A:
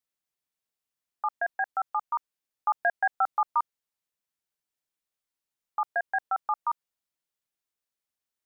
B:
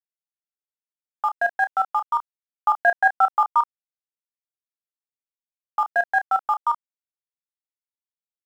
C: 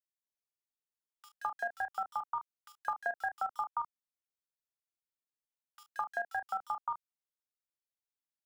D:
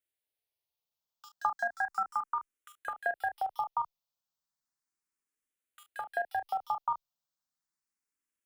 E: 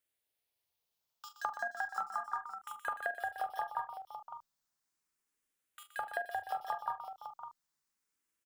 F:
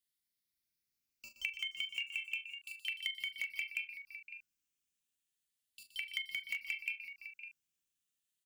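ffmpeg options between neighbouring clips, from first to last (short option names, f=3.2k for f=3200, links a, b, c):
-filter_complex "[0:a]aeval=exprs='sgn(val(0))*max(abs(val(0))-0.00251,0)':c=same,asplit=2[a][b];[b]adelay=30,volume=-9dB[c];[a][c]amix=inputs=2:normalize=0,volume=7dB"
-filter_complex "[0:a]acrossover=split=280|3300[a][b][c];[a]acompressor=threshold=-54dB:ratio=4[d];[b]acompressor=threshold=-29dB:ratio=4[e];[c]acompressor=threshold=-48dB:ratio=4[f];[d][e][f]amix=inputs=3:normalize=0,acrossover=split=2300[g][h];[g]adelay=210[i];[i][h]amix=inputs=2:normalize=0,volume=-5dB"
-filter_complex "[0:a]asplit=2[a][b];[b]afreqshift=0.34[c];[a][c]amix=inputs=2:normalize=1,volume=6.5dB"
-filter_complex "[0:a]acompressor=threshold=-38dB:ratio=5,asplit=2[a][b];[b]aecho=0:1:41|122|514|556:0.188|0.282|0.168|0.335[c];[a][c]amix=inputs=2:normalize=0,volume=3.5dB"
-filter_complex "[0:a]afftfilt=real='real(if(lt(b,272),68*(eq(floor(b/68),0)*3+eq(floor(b/68),1)*0+eq(floor(b/68),2)*1+eq(floor(b/68),3)*2)+mod(b,68),b),0)':imag='imag(if(lt(b,272),68*(eq(floor(b/68),0)*3+eq(floor(b/68),1)*0+eq(floor(b/68),2)*1+eq(floor(b/68),3)*2)+mod(b,68),b),0)':win_size=2048:overlap=0.75,acrossover=split=380|1600|6000[a][b][c][d];[b]acrusher=bits=6:mix=0:aa=0.000001[e];[a][e][c][d]amix=inputs=4:normalize=0,volume=-1.5dB"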